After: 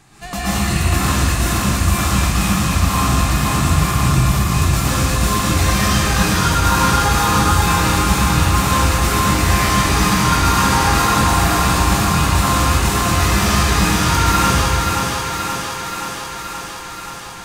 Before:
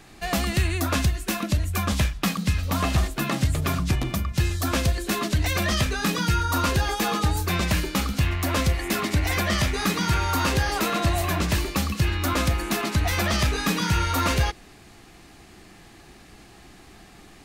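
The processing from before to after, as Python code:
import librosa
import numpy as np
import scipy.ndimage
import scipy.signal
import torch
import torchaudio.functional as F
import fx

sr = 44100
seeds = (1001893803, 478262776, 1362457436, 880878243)

p1 = fx.graphic_eq(x, sr, hz=(125, 500, 1000, 8000), db=(8, -3, 6, 7))
p2 = 10.0 ** (-12.5 / 20.0) * np.tanh(p1 / 10.0 ** (-12.5 / 20.0))
p3 = p2 + fx.echo_thinned(p2, sr, ms=527, feedback_pct=73, hz=180.0, wet_db=-4.5, dry=0)
p4 = fx.rev_plate(p3, sr, seeds[0], rt60_s=2.0, hf_ratio=0.95, predelay_ms=105, drr_db=-9.5)
y = F.gain(torch.from_numpy(p4), -4.5).numpy()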